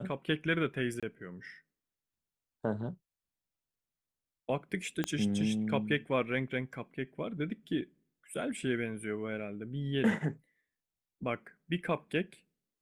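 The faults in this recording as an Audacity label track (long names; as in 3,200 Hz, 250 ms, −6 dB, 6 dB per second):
1.000000	1.030000	drop-out 26 ms
5.040000	5.040000	click −17 dBFS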